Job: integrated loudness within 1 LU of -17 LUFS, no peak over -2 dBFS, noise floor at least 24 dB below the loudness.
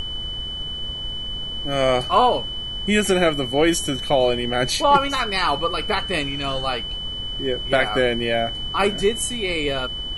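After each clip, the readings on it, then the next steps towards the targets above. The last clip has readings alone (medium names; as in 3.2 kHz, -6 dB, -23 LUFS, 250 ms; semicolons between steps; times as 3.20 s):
steady tone 3 kHz; tone level -28 dBFS; noise floor -30 dBFS; noise floor target -46 dBFS; loudness -21.5 LUFS; peak level -3.5 dBFS; loudness target -17.0 LUFS
-> band-stop 3 kHz, Q 30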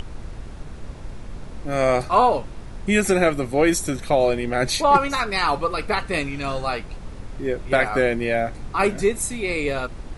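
steady tone not found; noise floor -37 dBFS; noise floor target -46 dBFS
-> noise print and reduce 9 dB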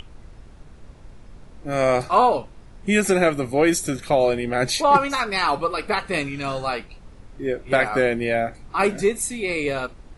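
noise floor -46 dBFS; loudness -21.5 LUFS; peak level -4.0 dBFS; loudness target -17.0 LUFS
-> trim +4.5 dB; peak limiter -2 dBFS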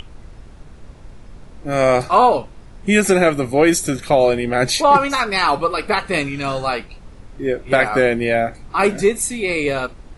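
loudness -17.5 LUFS; peak level -2.0 dBFS; noise floor -42 dBFS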